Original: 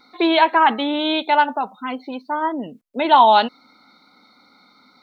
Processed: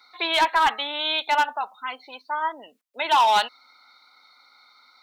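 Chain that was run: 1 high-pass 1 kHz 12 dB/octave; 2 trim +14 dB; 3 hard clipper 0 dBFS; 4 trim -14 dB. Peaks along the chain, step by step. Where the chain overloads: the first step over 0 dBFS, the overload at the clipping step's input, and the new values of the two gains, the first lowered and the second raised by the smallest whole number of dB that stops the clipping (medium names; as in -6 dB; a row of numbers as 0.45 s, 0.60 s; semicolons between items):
-5.0 dBFS, +9.0 dBFS, 0.0 dBFS, -14.0 dBFS; step 2, 9.0 dB; step 2 +5 dB, step 4 -5 dB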